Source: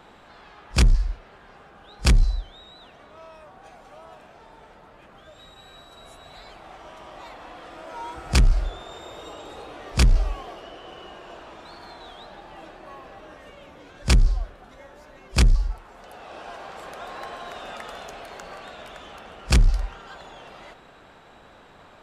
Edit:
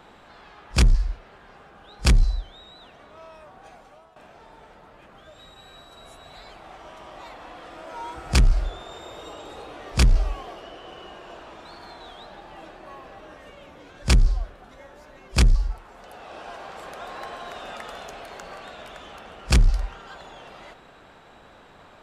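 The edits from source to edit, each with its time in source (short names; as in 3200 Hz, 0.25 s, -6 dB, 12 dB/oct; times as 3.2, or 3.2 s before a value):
3.74–4.16 fade out, to -13.5 dB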